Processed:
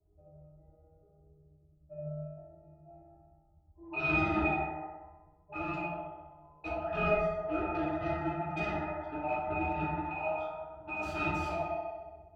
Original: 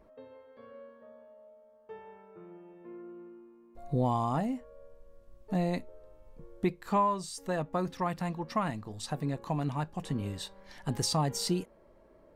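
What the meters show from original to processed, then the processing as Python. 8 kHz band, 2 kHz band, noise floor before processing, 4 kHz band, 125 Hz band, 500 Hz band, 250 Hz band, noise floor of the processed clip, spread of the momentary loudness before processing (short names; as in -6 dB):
under -20 dB, +10.0 dB, -60 dBFS, -12.0 dB, -6.5 dB, +1.5 dB, -3.5 dB, -65 dBFS, 22 LU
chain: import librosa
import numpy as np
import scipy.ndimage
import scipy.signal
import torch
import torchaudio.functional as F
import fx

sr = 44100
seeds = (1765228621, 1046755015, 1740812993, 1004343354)

p1 = fx.band_invert(x, sr, width_hz=1000)
p2 = fx.dmg_noise_colour(p1, sr, seeds[0], colour='brown', level_db=-61.0)
p3 = fx.low_shelf(p2, sr, hz=460.0, db=-7.0)
p4 = fx.env_lowpass(p3, sr, base_hz=360.0, full_db=-29.0)
p5 = fx.brickwall_lowpass(p4, sr, high_hz=8100.0)
p6 = fx.high_shelf(p5, sr, hz=5600.0, db=7.5)
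p7 = p6 + fx.echo_wet_bandpass(p6, sr, ms=64, feedback_pct=72, hz=1300.0, wet_db=-5, dry=0)
p8 = fx.fold_sine(p7, sr, drive_db=14, ceiling_db=-15.5)
p9 = fx.octave_resonator(p8, sr, note='D#', decay_s=0.19)
p10 = fx.rev_plate(p9, sr, seeds[1], rt60_s=1.2, hf_ratio=0.45, predelay_ms=0, drr_db=-4.5)
y = fx.band_widen(p10, sr, depth_pct=40)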